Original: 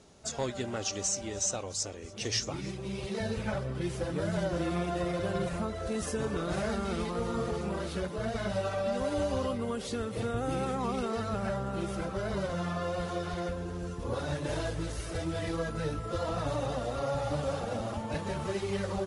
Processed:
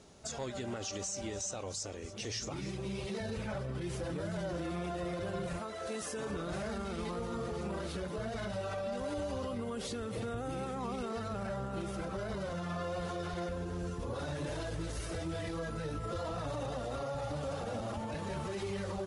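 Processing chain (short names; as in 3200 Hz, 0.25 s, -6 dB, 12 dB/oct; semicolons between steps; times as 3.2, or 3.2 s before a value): 5.58–6.29 HPF 760 Hz -> 320 Hz 6 dB/oct; limiter -30 dBFS, peak gain reduction 9 dB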